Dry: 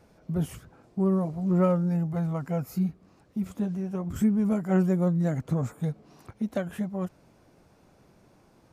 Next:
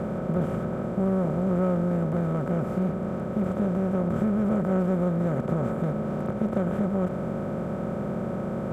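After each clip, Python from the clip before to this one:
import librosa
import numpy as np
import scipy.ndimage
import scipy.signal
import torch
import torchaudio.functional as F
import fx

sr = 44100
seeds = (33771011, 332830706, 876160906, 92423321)

y = fx.bin_compress(x, sr, power=0.2)
y = fx.lowpass(y, sr, hz=1300.0, slope=6)
y = y * librosa.db_to_amplitude(-5.0)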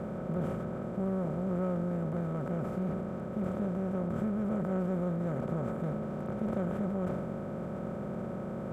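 y = fx.sustainer(x, sr, db_per_s=26.0)
y = y * librosa.db_to_amplitude(-8.0)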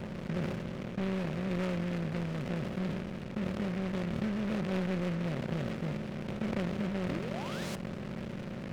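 y = fx.spec_paint(x, sr, seeds[0], shape='rise', start_s=7.08, length_s=0.68, low_hz=240.0, high_hz=3100.0, level_db=-38.0)
y = fx.backlash(y, sr, play_db=-33.5)
y = fx.noise_mod_delay(y, sr, seeds[1], noise_hz=1600.0, depth_ms=0.11)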